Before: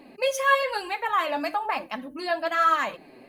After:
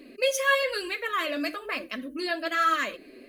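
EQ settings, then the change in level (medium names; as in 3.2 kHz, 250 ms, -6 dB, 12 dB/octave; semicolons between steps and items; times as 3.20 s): static phaser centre 350 Hz, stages 4; +3.0 dB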